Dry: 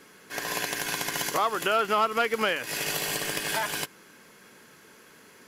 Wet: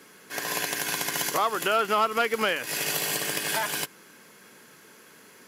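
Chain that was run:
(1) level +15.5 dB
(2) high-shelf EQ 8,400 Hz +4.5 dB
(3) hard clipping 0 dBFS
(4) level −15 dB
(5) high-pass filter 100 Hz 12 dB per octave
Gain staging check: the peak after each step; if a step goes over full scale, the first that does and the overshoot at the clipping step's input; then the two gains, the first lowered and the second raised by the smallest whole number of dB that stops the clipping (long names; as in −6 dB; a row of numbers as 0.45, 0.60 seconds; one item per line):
+3.5, +5.0, 0.0, −15.0, −13.0 dBFS
step 1, 5.0 dB
step 1 +10.5 dB, step 4 −10 dB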